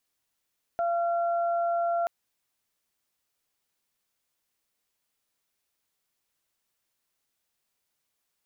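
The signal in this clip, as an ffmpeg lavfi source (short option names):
-f lavfi -i "aevalsrc='0.0631*sin(2*PI*685*t)+0.0168*sin(2*PI*1370*t)':d=1.28:s=44100"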